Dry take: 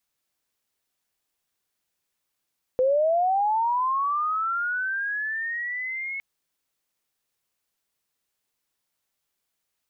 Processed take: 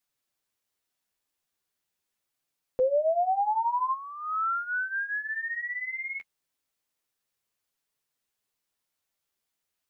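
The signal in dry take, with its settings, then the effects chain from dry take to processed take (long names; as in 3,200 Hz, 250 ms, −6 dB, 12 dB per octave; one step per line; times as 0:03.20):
glide linear 500 Hz → 2,200 Hz −17.5 dBFS → −29 dBFS 3.41 s
flanger 0.38 Hz, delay 6.5 ms, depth 7.9 ms, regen −14%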